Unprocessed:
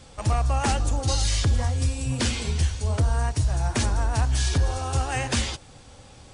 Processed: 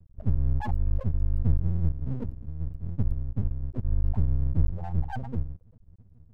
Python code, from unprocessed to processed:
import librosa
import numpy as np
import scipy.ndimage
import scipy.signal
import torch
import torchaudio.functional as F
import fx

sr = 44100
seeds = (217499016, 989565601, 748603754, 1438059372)

y = fx.spec_topn(x, sr, count=2)
y = fx.comb(y, sr, ms=6.5, depth=0.67, at=(2.23, 3.89))
y = np.maximum(y, 0.0)
y = y * 10.0 ** (4.0 / 20.0)